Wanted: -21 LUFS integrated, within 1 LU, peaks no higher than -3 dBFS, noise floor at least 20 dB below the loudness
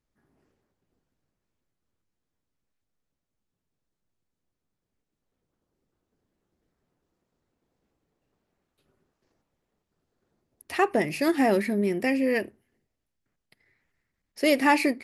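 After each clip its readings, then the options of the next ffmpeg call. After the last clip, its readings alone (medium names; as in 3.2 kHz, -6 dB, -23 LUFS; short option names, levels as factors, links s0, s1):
loudness -24.5 LUFS; peak level -10.5 dBFS; loudness target -21.0 LUFS
-> -af "volume=1.5"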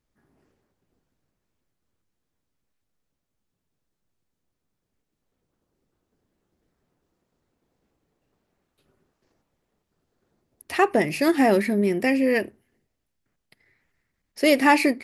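loudness -21.0 LUFS; peak level -7.0 dBFS; noise floor -80 dBFS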